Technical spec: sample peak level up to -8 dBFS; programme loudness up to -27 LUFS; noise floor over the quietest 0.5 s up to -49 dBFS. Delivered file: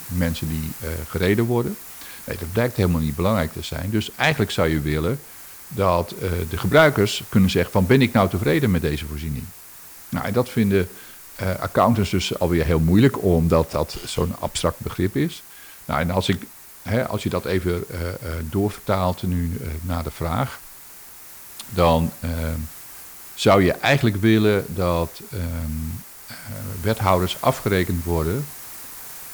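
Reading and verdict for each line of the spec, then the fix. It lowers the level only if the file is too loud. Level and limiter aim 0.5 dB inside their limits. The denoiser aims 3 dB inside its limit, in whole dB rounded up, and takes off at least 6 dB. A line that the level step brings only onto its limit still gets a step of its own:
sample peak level -4.5 dBFS: fail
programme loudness -21.5 LUFS: fail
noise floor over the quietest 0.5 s -43 dBFS: fail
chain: denoiser 6 dB, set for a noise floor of -43 dBFS; gain -6 dB

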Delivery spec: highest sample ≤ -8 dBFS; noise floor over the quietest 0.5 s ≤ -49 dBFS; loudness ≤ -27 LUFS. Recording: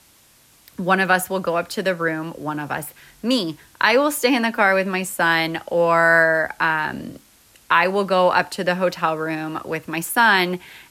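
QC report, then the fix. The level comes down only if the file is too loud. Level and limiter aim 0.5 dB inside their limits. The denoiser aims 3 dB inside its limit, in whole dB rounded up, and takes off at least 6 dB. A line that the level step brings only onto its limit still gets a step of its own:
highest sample -4.0 dBFS: fail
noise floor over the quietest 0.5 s -54 dBFS: OK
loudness -19.5 LUFS: fail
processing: gain -8 dB

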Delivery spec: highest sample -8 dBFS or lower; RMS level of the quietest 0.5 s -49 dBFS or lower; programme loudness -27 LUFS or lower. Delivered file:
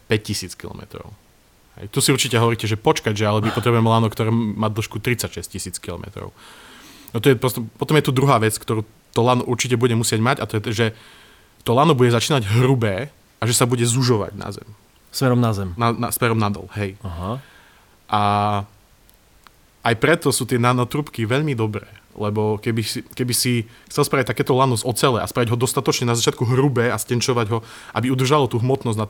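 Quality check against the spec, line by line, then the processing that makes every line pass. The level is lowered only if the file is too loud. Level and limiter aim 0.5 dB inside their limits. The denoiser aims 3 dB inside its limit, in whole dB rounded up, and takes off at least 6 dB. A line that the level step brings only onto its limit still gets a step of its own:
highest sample -3.0 dBFS: fail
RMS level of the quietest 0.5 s -54 dBFS: OK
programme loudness -19.5 LUFS: fail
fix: gain -8 dB

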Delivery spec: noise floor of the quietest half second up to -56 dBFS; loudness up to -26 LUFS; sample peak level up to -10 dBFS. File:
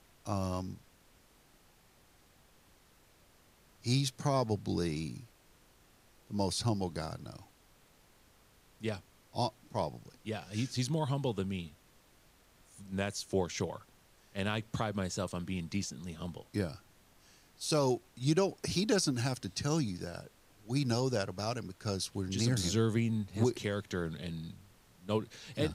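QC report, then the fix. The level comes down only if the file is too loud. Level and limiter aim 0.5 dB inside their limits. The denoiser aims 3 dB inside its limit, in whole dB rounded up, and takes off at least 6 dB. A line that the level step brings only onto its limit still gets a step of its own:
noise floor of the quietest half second -64 dBFS: OK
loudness -35.0 LUFS: OK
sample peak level -17.0 dBFS: OK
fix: none

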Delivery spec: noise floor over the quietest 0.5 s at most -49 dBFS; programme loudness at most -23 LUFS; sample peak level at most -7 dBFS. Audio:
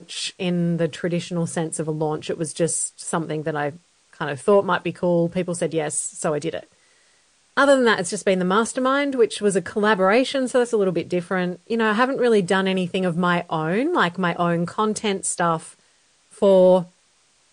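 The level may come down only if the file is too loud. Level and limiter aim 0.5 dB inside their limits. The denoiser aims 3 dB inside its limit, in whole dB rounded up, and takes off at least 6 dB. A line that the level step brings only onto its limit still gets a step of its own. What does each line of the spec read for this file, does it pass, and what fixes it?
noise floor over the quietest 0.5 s -61 dBFS: OK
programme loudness -21.5 LUFS: fail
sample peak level -5.5 dBFS: fail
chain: gain -2 dB

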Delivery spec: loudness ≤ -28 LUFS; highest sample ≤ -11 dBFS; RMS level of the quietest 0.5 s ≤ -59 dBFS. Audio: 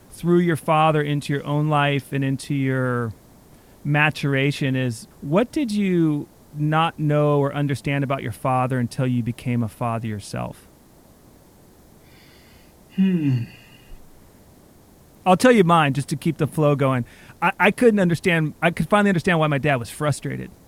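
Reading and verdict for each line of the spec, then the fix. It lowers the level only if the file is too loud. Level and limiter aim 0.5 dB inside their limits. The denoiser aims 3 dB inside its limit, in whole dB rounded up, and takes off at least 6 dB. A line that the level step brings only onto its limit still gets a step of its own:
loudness -21.0 LUFS: fail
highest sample -2.5 dBFS: fail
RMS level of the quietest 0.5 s -51 dBFS: fail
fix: denoiser 6 dB, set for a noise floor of -51 dBFS; gain -7.5 dB; limiter -11.5 dBFS

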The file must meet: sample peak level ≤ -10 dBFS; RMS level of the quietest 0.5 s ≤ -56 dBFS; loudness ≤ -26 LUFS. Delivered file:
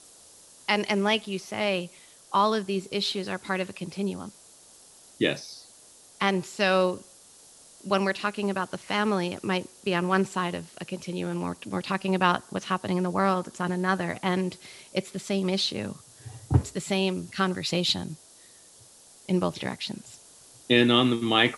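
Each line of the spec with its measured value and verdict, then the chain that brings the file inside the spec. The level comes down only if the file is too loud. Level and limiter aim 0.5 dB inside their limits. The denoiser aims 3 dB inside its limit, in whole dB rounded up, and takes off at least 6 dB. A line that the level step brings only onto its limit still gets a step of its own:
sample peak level -6.0 dBFS: fail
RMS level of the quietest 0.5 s -53 dBFS: fail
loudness -27.0 LUFS: OK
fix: denoiser 6 dB, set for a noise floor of -53 dBFS; limiter -10.5 dBFS

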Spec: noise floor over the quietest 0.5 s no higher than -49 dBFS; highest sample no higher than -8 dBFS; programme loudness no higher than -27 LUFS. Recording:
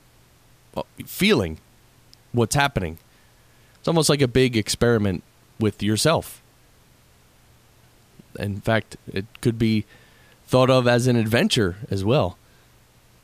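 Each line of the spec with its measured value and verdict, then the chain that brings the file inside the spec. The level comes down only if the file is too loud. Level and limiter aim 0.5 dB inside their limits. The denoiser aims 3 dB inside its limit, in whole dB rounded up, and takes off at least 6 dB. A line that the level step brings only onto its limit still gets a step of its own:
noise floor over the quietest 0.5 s -55 dBFS: OK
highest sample -5.5 dBFS: fail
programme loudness -21.5 LUFS: fail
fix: gain -6 dB

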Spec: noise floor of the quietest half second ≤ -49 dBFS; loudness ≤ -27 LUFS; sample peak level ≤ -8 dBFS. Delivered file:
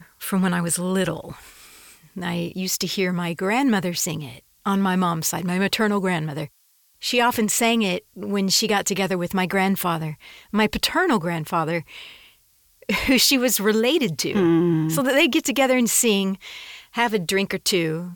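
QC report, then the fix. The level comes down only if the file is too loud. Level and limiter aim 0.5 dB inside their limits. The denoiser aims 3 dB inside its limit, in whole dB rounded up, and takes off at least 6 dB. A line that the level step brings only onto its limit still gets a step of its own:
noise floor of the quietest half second -61 dBFS: OK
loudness -21.0 LUFS: fail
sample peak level -6.5 dBFS: fail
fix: gain -6.5 dB

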